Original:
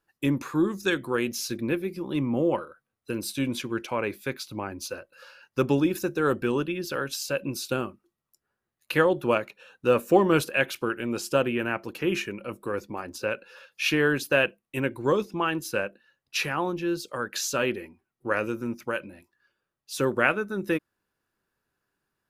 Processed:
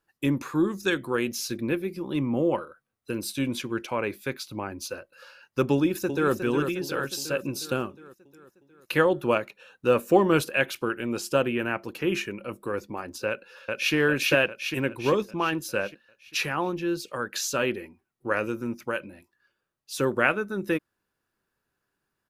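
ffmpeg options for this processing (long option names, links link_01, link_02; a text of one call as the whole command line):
ffmpeg -i in.wav -filter_complex "[0:a]asplit=2[link_01][link_02];[link_02]afade=type=in:start_time=5.73:duration=0.01,afade=type=out:start_time=6.33:duration=0.01,aecho=0:1:360|720|1080|1440|1800|2160|2520|2880:0.421697|0.253018|0.151811|0.0910864|0.0546519|0.0327911|0.0196747|0.0118048[link_03];[link_01][link_03]amix=inputs=2:normalize=0,asplit=2[link_04][link_05];[link_05]afade=type=in:start_time=13.28:duration=0.01,afade=type=out:start_time=13.94:duration=0.01,aecho=0:1:400|800|1200|1600|2000|2400|2800|3200:0.944061|0.519233|0.285578|0.157068|0.0863875|0.0475131|0.0261322|0.0143727[link_06];[link_04][link_06]amix=inputs=2:normalize=0" out.wav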